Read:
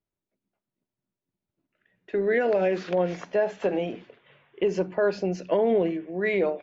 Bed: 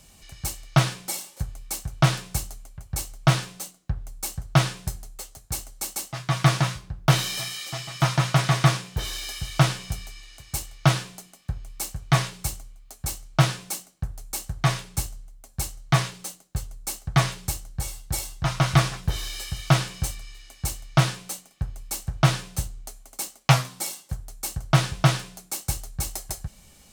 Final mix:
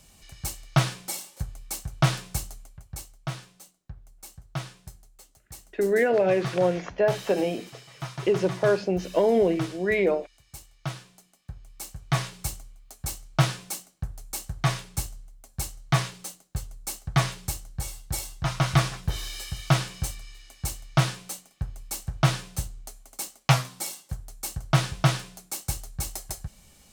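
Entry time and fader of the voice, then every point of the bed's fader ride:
3.65 s, +1.5 dB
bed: 0:02.61 −2.5 dB
0:03.26 −14 dB
0:11.00 −14 dB
0:12.46 −2.5 dB

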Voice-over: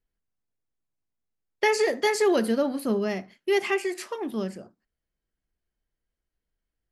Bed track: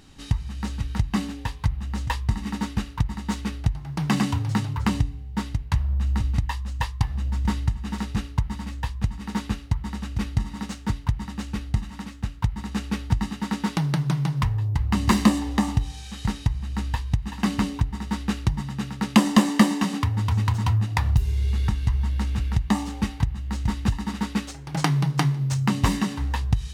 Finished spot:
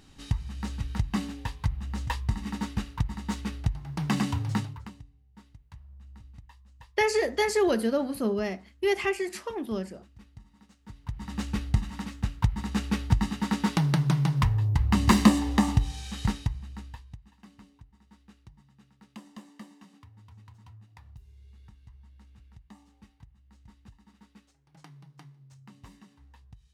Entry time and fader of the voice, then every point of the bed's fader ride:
5.35 s, −2.0 dB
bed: 0:04.60 −4.5 dB
0:04.96 −25.5 dB
0:10.78 −25.5 dB
0:11.36 −0.5 dB
0:16.24 −0.5 dB
0:17.46 −29.5 dB

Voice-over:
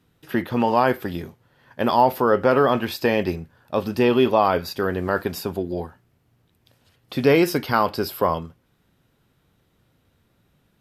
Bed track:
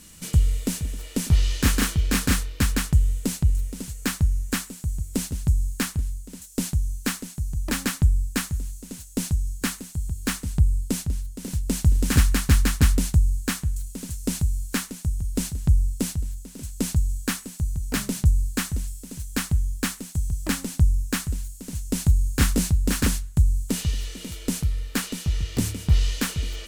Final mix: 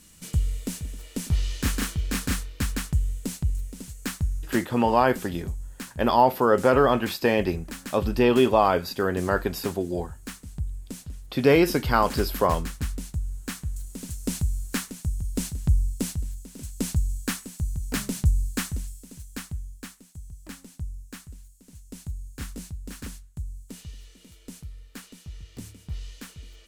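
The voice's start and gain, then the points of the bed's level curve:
4.20 s, −1.5 dB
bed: 0:04.40 −5.5 dB
0:04.74 −12 dB
0:13.12 −12 dB
0:13.98 −2.5 dB
0:18.66 −2.5 dB
0:19.98 −16 dB

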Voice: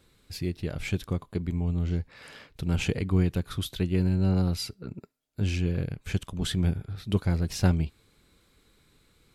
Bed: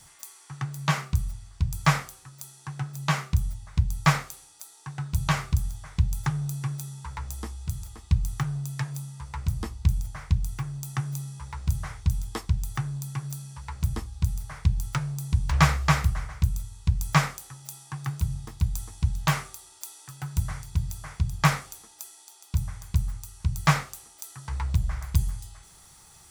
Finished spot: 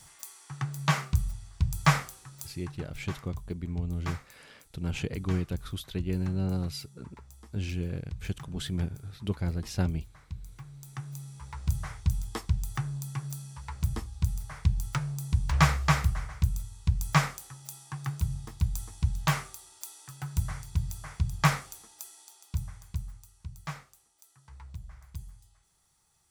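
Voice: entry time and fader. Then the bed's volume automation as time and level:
2.15 s, −5.5 dB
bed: 0:02.45 −1 dB
0:03.04 −16.5 dB
0:10.35 −16.5 dB
0:11.68 −2.5 dB
0:22.24 −2.5 dB
0:23.73 −18 dB

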